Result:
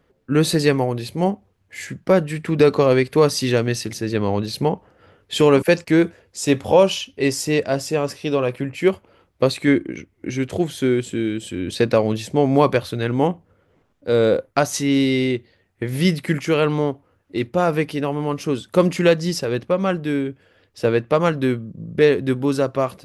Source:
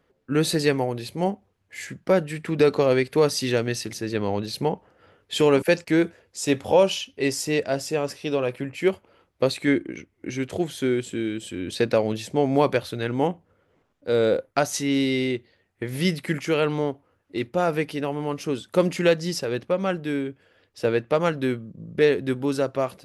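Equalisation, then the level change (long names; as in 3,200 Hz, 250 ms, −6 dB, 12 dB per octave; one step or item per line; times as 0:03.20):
dynamic equaliser 1,100 Hz, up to +6 dB, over −49 dBFS, Q 7.9
low-shelf EQ 220 Hz +5 dB
+3.0 dB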